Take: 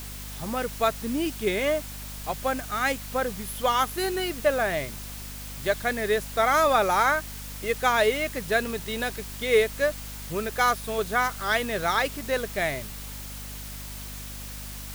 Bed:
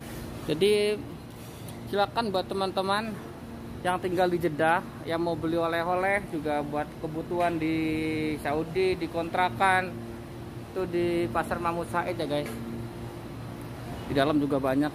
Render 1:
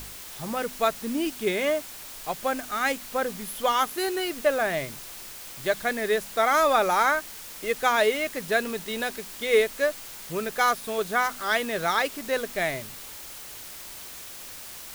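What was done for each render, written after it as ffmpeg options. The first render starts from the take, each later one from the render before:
-af "bandreject=f=50:t=h:w=4,bandreject=f=100:t=h:w=4,bandreject=f=150:t=h:w=4,bandreject=f=200:t=h:w=4,bandreject=f=250:t=h:w=4"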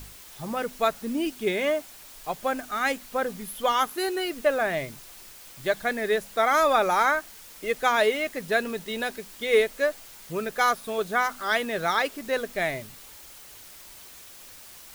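-af "afftdn=nr=6:nf=-41"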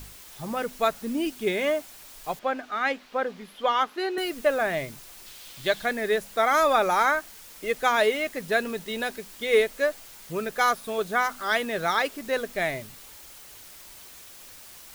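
-filter_complex "[0:a]asettb=1/sr,asplit=3[s0][s1][s2];[s0]atrim=end=2.394[s3];[s1]atrim=start=2.39:end=4.18,asetpts=PTS-STARTPTS,afade=t=in:d=0.004:c=qsin,afade=t=out:st=1.786:d=0.004:c=qsin,acrossover=split=210 4700:gain=0.178 1 0.1[s4][s5][s6];[s4][s5][s6]amix=inputs=3:normalize=0[s7];[s2]atrim=start=4.176[s8];[s3][s7]acrossfade=d=0.004:c1=hsin:c2=qsin[s9];[s9][s8]acrossfade=d=0.004:c1=qsin:c2=hsin,asettb=1/sr,asplit=3[s10][s11][s12];[s10]atrim=end=5.264[s13];[s11]atrim=start=5.26:end=5.86,asetpts=PTS-STARTPTS,afade=t=in:d=0.004:c=qsin,afade=t=out:st=0.596:d=0.004:c=qsin,equalizer=f=3500:t=o:w=1:g=8[s14];[s12]atrim=start=5.856[s15];[s13][s14]acrossfade=d=0.004:c1=hsin:c2=qsin[s16];[s16][s15]acrossfade=d=0.004:c1=qsin:c2=hsin"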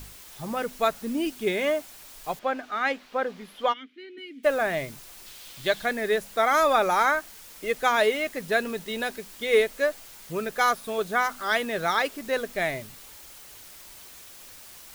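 -filter_complex "[0:a]asplit=3[s0][s1][s2];[s0]afade=t=out:st=3.72:d=0.02[s3];[s1]asplit=3[s4][s5][s6];[s4]bandpass=f=270:t=q:w=8,volume=1[s7];[s5]bandpass=f=2290:t=q:w=8,volume=0.501[s8];[s6]bandpass=f=3010:t=q:w=8,volume=0.355[s9];[s7][s8][s9]amix=inputs=3:normalize=0,afade=t=in:st=3.72:d=0.02,afade=t=out:st=4.43:d=0.02[s10];[s2]afade=t=in:st=4.43:d=0.02[s11];[s3][s10][s11]amix=inputs=3:normalize=0"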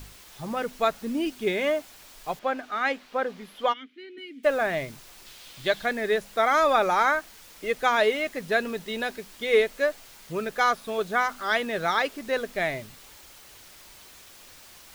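-filter_complex "[0:a]acrossover=split=6400[s0][s1];[s1]acompressor=threshold=0.00355:ratio=4:attack=1:release=60[s2];[s0][s2]amix=inputs=2:normalize=0"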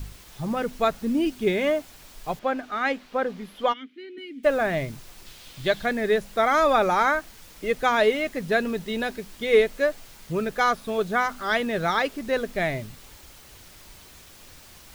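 -af "lowshelf=f=260:g=10.5"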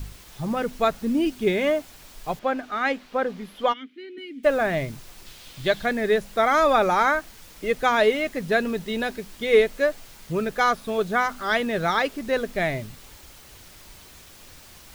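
-af "volume=1.12"

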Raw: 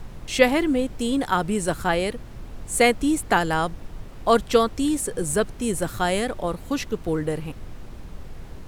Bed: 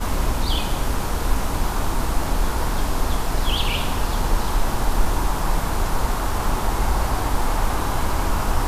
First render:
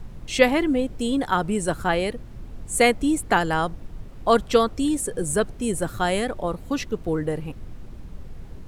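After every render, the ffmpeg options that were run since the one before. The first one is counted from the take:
-af "afftdn=nr=6:nf=-40"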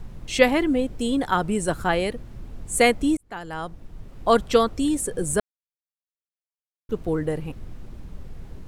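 -filter_complex "[0:a]asplit=4[s0][s1][s2][s3];[s0]atrim=end=3.17,asetpts=PTS-STARTPTS,afade=t=out:st=3.166:d=0.004:c=hsin[s4];[s1]atrim=start=3.17:end=5.4,asetpts=PTS-STARTPTS,afade=t=in:d=1.13,afade=t=out:st=2.226:d=0.004:c=hsin[s5];[s2]atrim=start=5.4:end=6.89,asetpts=PTS-STARTPTS,volume=0[s6];[s3]atrim=start=6.89,asetpts=PTS-STARTPTS,afade=t=in:d=0.004:c=hsin[s7];[s4][s5][s6][s7]concat=n=4:v=0:a=1"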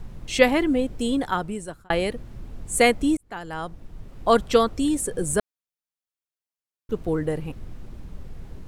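-filter_complex "[0:a]asplit=2[s0][s1];[s0]atrim=end=1.9,asetpts=PTS-STARTPTS,afade=t=out:st=1.11:d=0.79[s2];[s1]atrim=start=1.9,asetpts=PTS-STARTPTS,afade=t=in:d=0.004:c=hsin[s3];[s2][s3]concat=n=2:v=0:a=1"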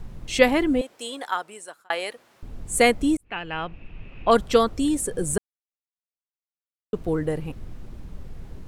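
-filter_complex "[0:a]asettb=1/sr,asplit=3[s0][s1][s2];[s0]atrim=end=0.814[s3];[s1]atrim=start=0.81:end=2.43,asetpts=PTS-STARTPTS,afade=t=in:d=0.004:c=qsin,afade=t=out:st=1.616:d=0.004:c=qsin,highpass=690[s4];[s2]atrim=start=2.426[s5];[s3][s4]acrossfade=d=0.004:c1=hsin:c2=qsin[s6];[s6][s5]acrossfade=d=0.004:c1=qsin:c2=hsin,asplit=3[s7][s8][s9];[s7]afade=t=out:st=3.24:d=0.02[s10];[s8]lowpass=f=2600:t=q:w=12,afade=t=in:st=3.24:d=0.02,afade=t=out:st=4.3:d=0.02[s11];[s9]afade=t=in:st=4.3:d=0.02[s12];[s10][s11][s12]amix=inputs=3:normalize=0,asplit=3[s13][s14][s15];[s13]atrim=end=5.38,asetpts=PTS-STARTPTS,afade=t=out:st=5.376:d=0.004:c=hsin[s16];[s14]atrim=start=5.38:end=6.93,asetpts=PTS-STARTPTS,volume=0[s17];[s15]atrim=start=6.93,asetpts=PTS-STARTPTS,afade=t=in:d=0.004:c=hsin[s18];[s16][s17][s18]concat=n=3:v=0:a=1"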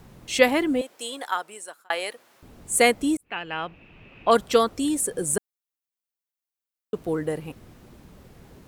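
-af "highpass=f=230:p=1,highshelf=f=11000:g=8.5"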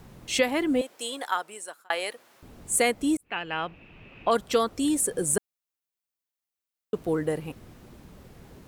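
-af "alimiter=limit=0.266:level=0:latency=1:release=343"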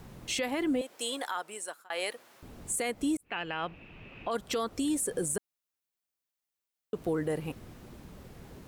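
-af "acompressor=threshold=0.0447:ratio=2.5,alimiter=limit=0.075:level=0:latency=1:release=18"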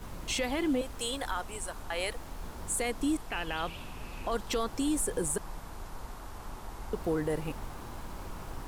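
-filter_complex "[1:a]volume=0.0891[s0];[0:a][s0]amix=inputs=2:normalize=0"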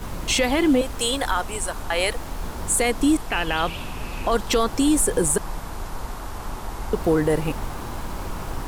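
-af "volume=3.55"

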